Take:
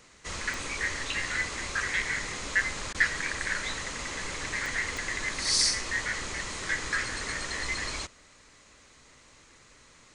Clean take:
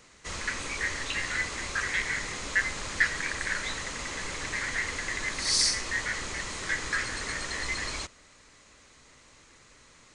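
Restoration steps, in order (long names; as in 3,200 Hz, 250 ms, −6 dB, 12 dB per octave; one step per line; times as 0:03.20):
click removal
repair the gap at 0:02.93, 14 ms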